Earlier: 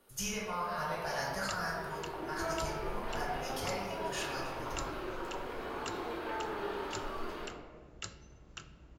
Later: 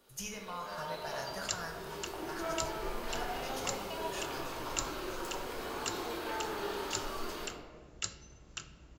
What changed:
speech: send -9.0 dB; first sound: add tone controls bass 0 dB, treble +15 dB; second sound: add high shelf 3800 Hz +11 dB

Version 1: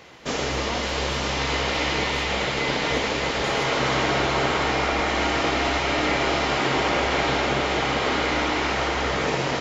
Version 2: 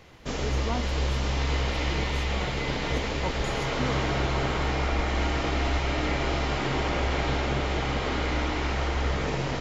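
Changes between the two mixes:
background -7.5 dB; master: remove HPF 310 Hz 6 dB/oct

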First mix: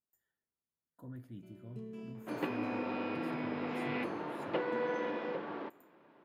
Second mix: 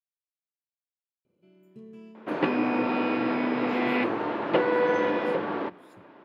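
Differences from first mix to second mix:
speech: entry +1.50 s; second sound +11.5 dB; master: add high shelf 7600 Hz -4.5 dB

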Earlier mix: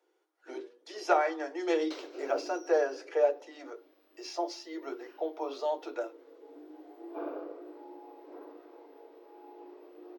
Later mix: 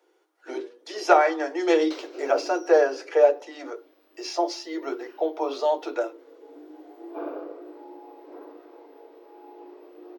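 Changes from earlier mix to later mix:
speech +8.5 dB; background +4.5 dB

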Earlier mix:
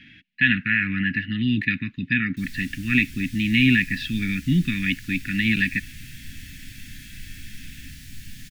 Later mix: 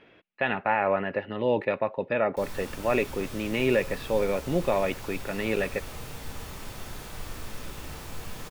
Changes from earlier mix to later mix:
speech -12.0 dB; master: remove Chebyshev band-stop 270–1700 Hz, order 4

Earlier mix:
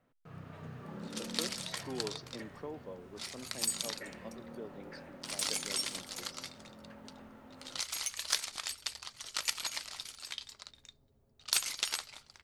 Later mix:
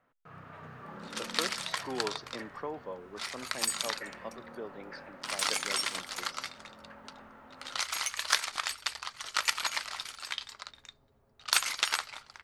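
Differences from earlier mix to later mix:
first sound -5.0 dB; master: add bell 1300 Hz +12 dB 2.3 oct

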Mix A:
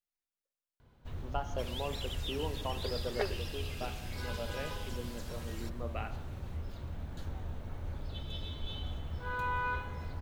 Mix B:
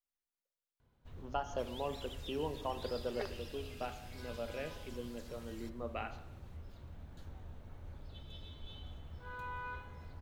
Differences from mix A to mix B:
first sound -9.5 dB; second sound -8.0 dB

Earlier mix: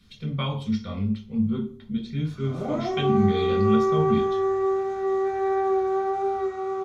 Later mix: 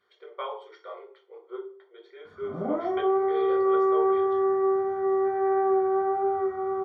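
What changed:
speech: add brick-wall FIR high-pass 340 Hz; master: add polynomial smoothing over 41 samples

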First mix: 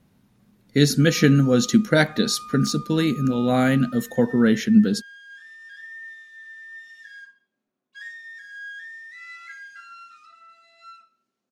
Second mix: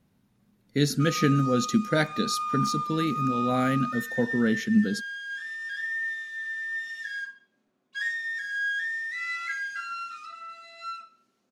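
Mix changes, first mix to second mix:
speech -6.5 dB; background +8.5 dB

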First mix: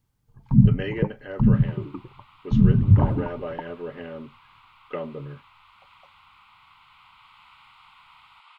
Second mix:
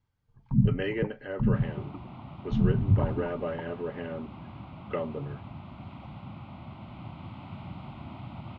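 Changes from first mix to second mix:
first sound -7.5 dB; second sound: remove steep high-pass 980 Hz 48 dB/oct; master: add air absorption 96 m

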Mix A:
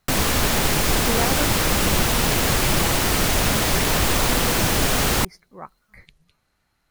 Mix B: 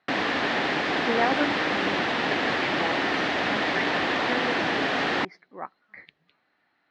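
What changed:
background -4.0 dB; master: add speaker cabinet 260–3900 Hz, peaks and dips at 290 Hz +6 dB, 740 Hz +4 dB, 1800 Hz +7 dB

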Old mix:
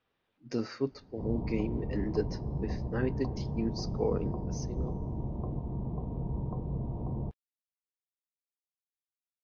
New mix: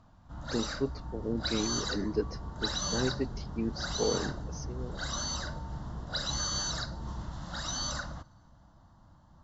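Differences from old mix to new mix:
first sound: unmuted; second sound -10.5 dB

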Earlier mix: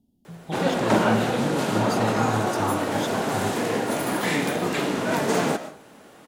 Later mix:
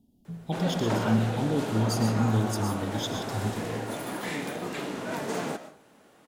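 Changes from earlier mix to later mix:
speech: send on; background -9.0 dB

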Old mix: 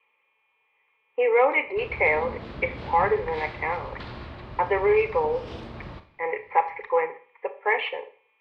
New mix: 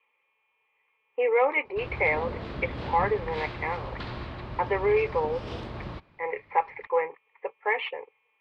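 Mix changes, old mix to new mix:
background +5.5 dB; reverb: off

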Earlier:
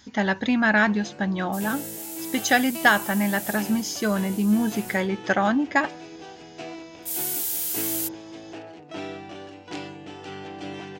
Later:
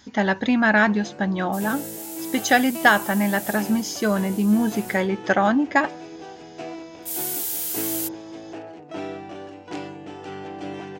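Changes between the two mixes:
first sound: add bell 3700 Hz -4 dB 1.4 oct; master: add bell 540 Hz +3.5 dB 2.9 oct

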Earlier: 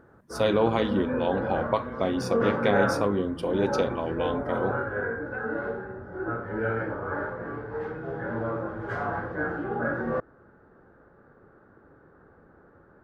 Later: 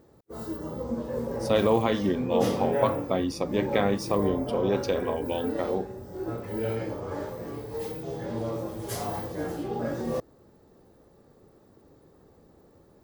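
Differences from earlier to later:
speech: entry +1.10 s; background: remove synth low-pass 1500 Hz, resonance Q 8.5

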